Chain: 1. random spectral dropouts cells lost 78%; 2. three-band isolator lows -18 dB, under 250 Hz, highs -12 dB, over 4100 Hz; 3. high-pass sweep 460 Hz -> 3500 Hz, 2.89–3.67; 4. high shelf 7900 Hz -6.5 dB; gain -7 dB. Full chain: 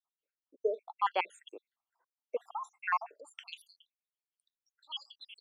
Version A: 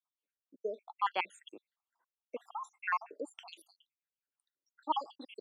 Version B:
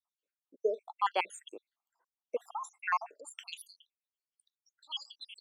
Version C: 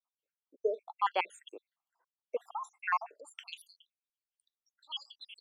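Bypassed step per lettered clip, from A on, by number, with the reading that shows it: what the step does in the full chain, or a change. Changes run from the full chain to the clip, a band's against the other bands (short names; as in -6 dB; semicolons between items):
3, 250 Hz band +7.5 dB; 2, 8 kHz band +10.0 dB; 4, 8 kHz band +3.0 dB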